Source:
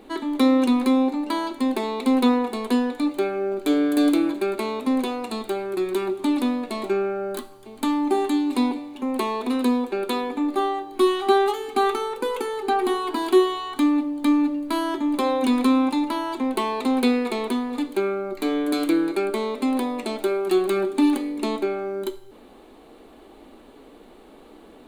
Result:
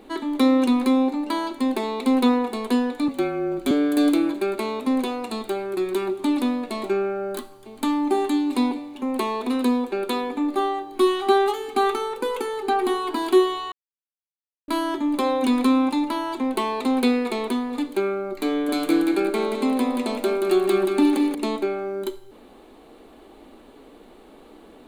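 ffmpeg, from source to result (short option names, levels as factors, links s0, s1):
-filter_complex "[0:a]asettb=1/sr,asplit=3[s0][s1][s2];[s0]atrim=end=3.084[s3];[s1]atrim=start=3.08:end=3.71,asetpts=PTS-STARTPTS,afade=t=in:d=0.004:c=qsin,afade=t=out:st=0.626:d=0.004:c=qsin,afreqshift=-33[s4];[s2]atrim=start=3.706[s5];[s3][s4]acrossfade=d=0.004:c1=hsin:c2=qsin[s6];[s6][s5]acrossfade=d=0.004:c1=qsin:c2=hsin,asettb=1/sr,asplit=3[s7][s8][s9];[s7]atrim=end=18.514[s10];[s8]atrim=start=18.51:end=21.35,asetpts=PTS-STARTPTS,afade=t=in:d=0.004:c=qsin,afade=t=out:st=2.836:d=0.004:c=qsin,aecho=1:1:179|358|537|716:0.596|0.197|0.0649|0.0214,atrim=end_sample=125244[s11];[s9]atrim=start=21.346[s12];[s10][s11]acrossfade=d=0.004:c1=hsin:c2=qsin[s13];[s13][s12]acrossfade=d=0.004:c1=qsin:c2=hsin,asplit=3[s14][s15][s16];[s14]atrim=end=13.72,asetpts=PTS-STARTPTS,afade=t=out:st=13.716:d=0.004:c=hsin[s17];[s15]atrim=start=13.72:end=14.68,asetpts=PTS-STARTPTS,volume=0[s18];[s16]atrim=start=14.68,asetpts=PTS-STARTPTS,afade=t=in:d=0.004:c=hsin[s19];[s17][s18][s19]concat=n=3:v=0:a=1"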